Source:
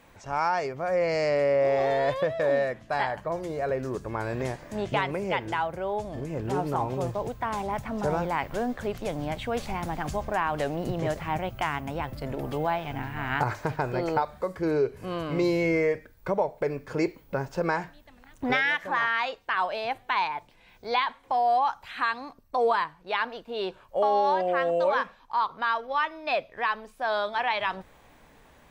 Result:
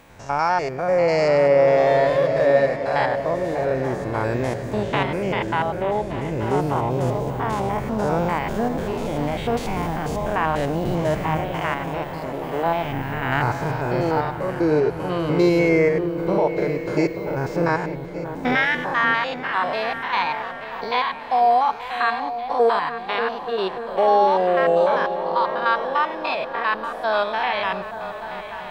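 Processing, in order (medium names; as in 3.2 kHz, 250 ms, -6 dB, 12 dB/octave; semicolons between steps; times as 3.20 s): spectrogram pixelated in time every 100 ms; 11.40–12.66 s: tone controls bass -13 dB, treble -3 dB; delay with an opening low-pass 293 ms, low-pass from 200 Hz, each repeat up 2 oct, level -6 dB; trim +7.5 dB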